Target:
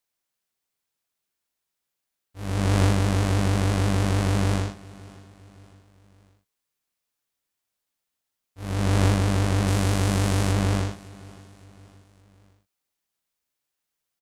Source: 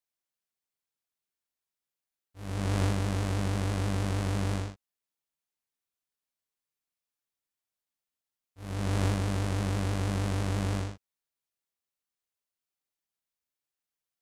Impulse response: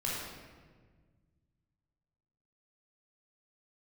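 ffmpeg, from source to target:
-filter_complex "[0:a]asettb=1/sr,asplit=3[link_01][link_02][link_03];[link_01]atrim=end=9.674[link_04];[link_02]atrim=start=9.67:end=10.52,asetpts=PTS-STARTPTS,afade=type=in:duration=0.004:curve=qsin,afade=type=out:start_time=0.846:duration=0.004:curve=qsin,highshelf=frequency=4800:gain=6[link_05];[link_03]atrim=start=10.516[link_06];[link_04][link_05]acrossfade=duration=0.004:curve1=hsin:curve2=qsin[link_07];[link_07][link_06]acrossfade=duration=0.004:curve1=qsin:curve2=hsin,aecho=1:1:564|1128|1692:0.0891|0.041|0.0189,volume=7.5dB"

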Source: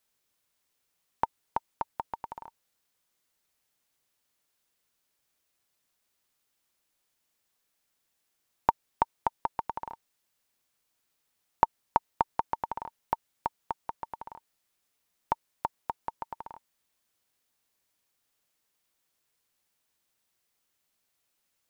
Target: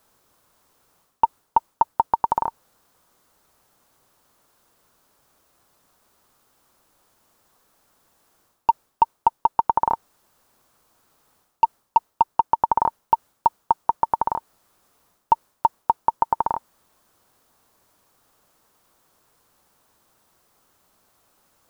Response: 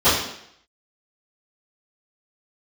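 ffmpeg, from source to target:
-af "acontrast=84,aeval=exprs='0.841*sin(PI/2*1.78*val(0)/0.841)':channel_layout=same,areverse,acompressor=threshold=-21dB:ratio=6,areverse,highshelf=frequency=1600:width_type=q:width=1.5:gain=-8,volume=4.5dB"

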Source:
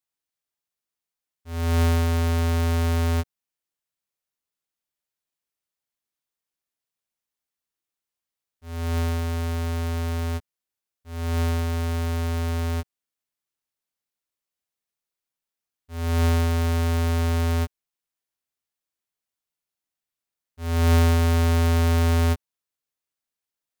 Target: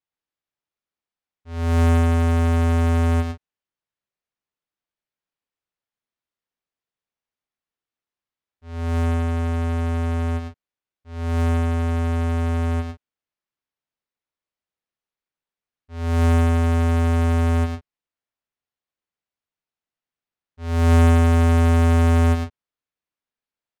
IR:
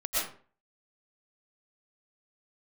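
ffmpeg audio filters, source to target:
-af "aecho=1:1:107.9|139.9:0.631|0.251,adynamicsmooth=sensitivity=2:basefreq=4100"

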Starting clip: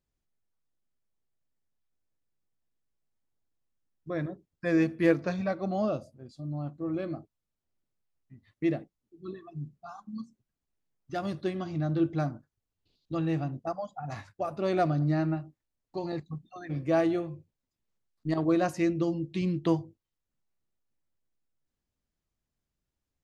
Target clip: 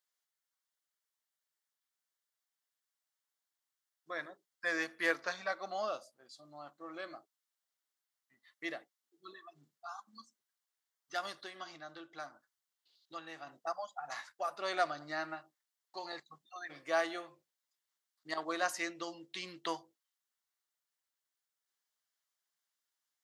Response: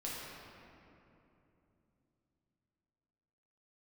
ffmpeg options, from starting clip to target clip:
-filter_complex "[0:a]asettb=1/sr,asplit=3[link_01][link_02][link_03];[link_01]atrim=end=11.314[link_04];[link_02]atrim=start=11.31:end=13.47,asetpts=PTS-STARTPTS,afade=type=in:duration=0.004:curve=qsin,afade=type=out:start_time=2.156:duration=0.004:curve=qsin,acompressor=threshold=-33dB:ratio=4[link_05];[link_03]atrim=start=13.466[link_06];[link_04][link_05]acrossfade=duration=0.004:curve1=hsin:curve2=qsin[link_07];[link_07][link_06]acrossfade=duration=0.004:curve1=qsin:curve2=hsin,highpass=1200,equalizer=frequency=2500:width=6.1:gain=-9,volume=4.5dB"

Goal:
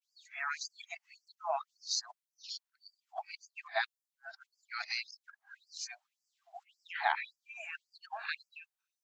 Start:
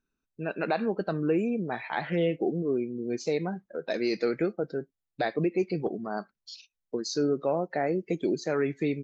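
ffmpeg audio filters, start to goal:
ffmpeg -i in.wav -af "areverse,afftfilt=real='re*gte(b*sr/1024,610*pow(4700/610,0.5+0.5*sin(2*PI*1.8*pts/sr)))':imag='im*gte(b*sr/1024,610*pow(4700/610,0.5+0.5*sin(2*PI*1.8*pts/sr)))':win_size=1024:overlap=0.75,volume=1.5dB" out.wav

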